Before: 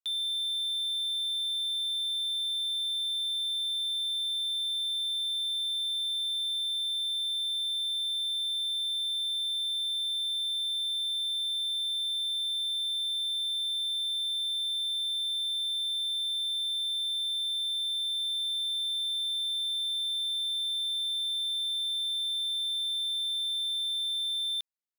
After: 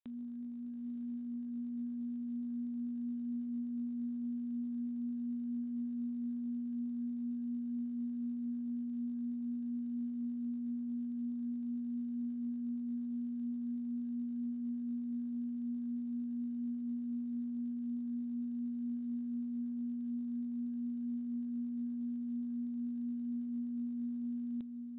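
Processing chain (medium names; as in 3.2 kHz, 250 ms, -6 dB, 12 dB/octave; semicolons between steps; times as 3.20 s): phaser 0.45 Hz, delay 1.4 ms, feedback 28%; saturation -34.5 dBFS, distortion -11 dB; distance through air 91 m; echo that smears into a reverb 928 ms, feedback 67%, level -9 dB; frequency inversion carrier 3.8 kHz; trim -4 dB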